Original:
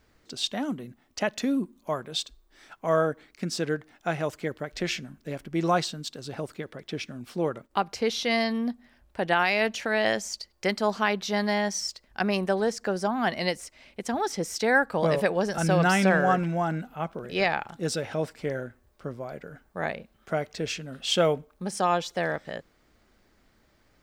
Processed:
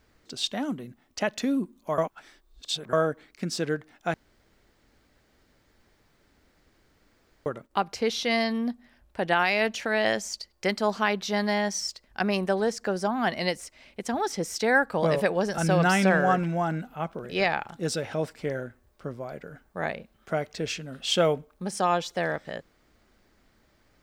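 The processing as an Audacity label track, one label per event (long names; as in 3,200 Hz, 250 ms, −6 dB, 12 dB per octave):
1.980000	2.930000	reverse
4.140000	7.460000	fill with room tone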